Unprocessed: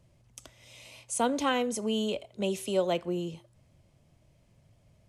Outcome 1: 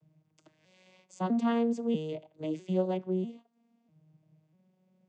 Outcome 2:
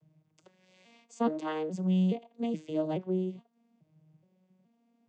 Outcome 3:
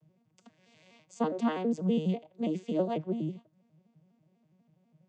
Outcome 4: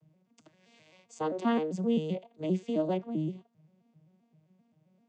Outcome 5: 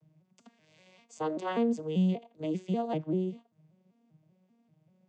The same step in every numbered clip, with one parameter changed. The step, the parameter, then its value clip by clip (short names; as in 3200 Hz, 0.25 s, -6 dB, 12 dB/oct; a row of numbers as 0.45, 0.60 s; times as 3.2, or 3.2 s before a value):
arpeggiated vocoder, a note every: 646, 422, 82, 131, 195 ms